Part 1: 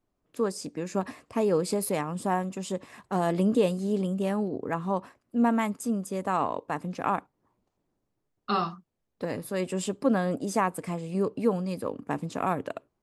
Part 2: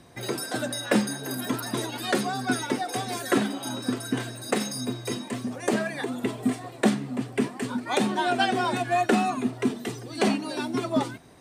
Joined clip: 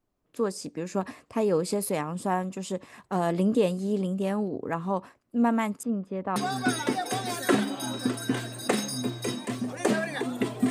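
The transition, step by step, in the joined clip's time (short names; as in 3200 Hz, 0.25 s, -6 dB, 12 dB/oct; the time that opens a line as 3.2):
part 1
5.83–6.36 air absorption 380 m
6.36 switch to part 2 from 2.19 s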